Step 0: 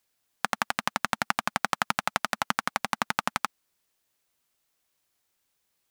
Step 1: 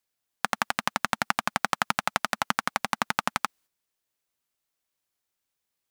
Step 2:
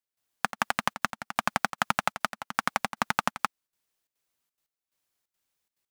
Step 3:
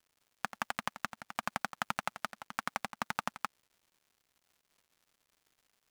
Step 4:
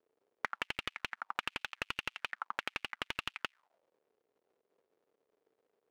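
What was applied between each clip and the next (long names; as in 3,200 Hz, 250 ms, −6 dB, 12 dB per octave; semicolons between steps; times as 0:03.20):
noise gate −57 dBFS, range −8 dB; level +1 dB
in parallel at −6.5 dB: wave folding −11.5 dBFS; on the sum: gate pattern "..xxxx.xxxx.x." 177 BPM −12 dB; level −1.5 dB
surface crackle 250 per second −48 dBFS; level −9 dB
envelope filter 430–2,800 Hz, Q 4, up, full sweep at −36.5 dBFS; slew-rate limiting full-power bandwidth 27 Hz; level +13.5 dB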